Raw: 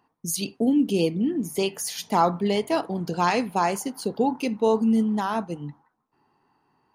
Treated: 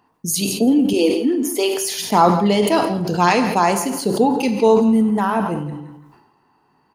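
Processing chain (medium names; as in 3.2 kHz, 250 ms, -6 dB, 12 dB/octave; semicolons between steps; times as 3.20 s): 0.93–1.78 s: steep high-pass 240 Hz 96 dB/octave; 4.88–5.61 s: high-order bell 4.8 kHz -10 dB 1.3 oct; feedback delay 166 ms, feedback 22%, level -15 dB; gated-style reverb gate 250 ms falling, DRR 8.5 dB; decay stretcher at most 53 dB/s; trim +6 dB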